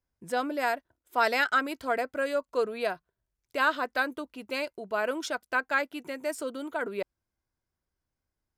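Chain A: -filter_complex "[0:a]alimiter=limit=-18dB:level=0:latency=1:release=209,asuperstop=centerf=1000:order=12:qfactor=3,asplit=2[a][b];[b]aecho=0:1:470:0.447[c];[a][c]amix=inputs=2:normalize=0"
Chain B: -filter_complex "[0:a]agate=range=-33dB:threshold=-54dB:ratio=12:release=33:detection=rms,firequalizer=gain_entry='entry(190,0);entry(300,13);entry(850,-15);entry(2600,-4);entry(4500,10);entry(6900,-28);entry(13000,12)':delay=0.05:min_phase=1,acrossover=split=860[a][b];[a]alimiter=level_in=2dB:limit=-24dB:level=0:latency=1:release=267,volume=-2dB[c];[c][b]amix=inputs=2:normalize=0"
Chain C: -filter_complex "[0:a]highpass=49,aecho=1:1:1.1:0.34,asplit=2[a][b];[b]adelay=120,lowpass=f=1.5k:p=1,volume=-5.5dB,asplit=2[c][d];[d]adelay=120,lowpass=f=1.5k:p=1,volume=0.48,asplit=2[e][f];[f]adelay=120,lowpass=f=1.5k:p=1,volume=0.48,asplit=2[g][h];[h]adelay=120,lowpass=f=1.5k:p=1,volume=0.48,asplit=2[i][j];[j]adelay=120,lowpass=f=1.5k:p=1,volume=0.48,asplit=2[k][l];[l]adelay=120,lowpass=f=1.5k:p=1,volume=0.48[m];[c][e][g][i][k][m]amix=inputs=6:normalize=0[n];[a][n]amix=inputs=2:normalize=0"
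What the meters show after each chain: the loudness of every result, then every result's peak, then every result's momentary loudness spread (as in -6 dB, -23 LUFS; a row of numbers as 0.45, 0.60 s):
-31.5, -33.0, -30.0 LUFS; -16.0, -16.0, -12.0 dBFS; 7, 6, 11 LU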